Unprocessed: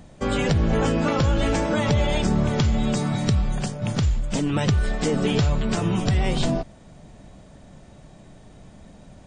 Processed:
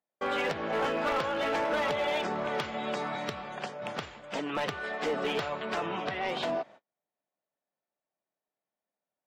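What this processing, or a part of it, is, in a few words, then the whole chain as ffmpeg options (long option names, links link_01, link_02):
walkie-talkie: -filter_complex "[0:a]highpass=560,lowpass=2700,asoftclip=type=hard:threshold=-24.5dB,agate=range=-37dB:threshold=-49dB:ratio=16:detection=peak,asettb=1/sr,asplit=3[link_01][link_02][link_03];[link_01]atrim=end=5.864[link_04];[link_02]atrim=start=5.86:end=6.29,asetpts=PTS-STARTPTS,afade=type=in:duration=0.004:curve=qsin,afade=type=out:start_time=0.426:duration=0.004:curve=qsin,lowpass=5100[link_05];[link_03]atrim=start=6.286[link_06];[link_04][link_05]acrossfade=duration=0.004:curve1=hsin:curve2=qsin[link_07];[link_07][link_06]acrossfade=duration=0.004:curve1=qsin:curve2=hsin"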